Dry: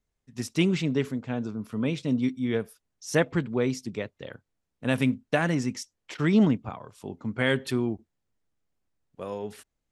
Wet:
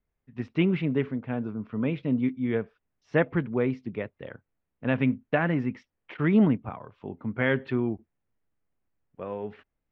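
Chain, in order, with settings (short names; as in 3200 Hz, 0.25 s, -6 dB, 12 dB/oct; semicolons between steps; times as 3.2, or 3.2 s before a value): LPF 2600 Hz 24 dB/oct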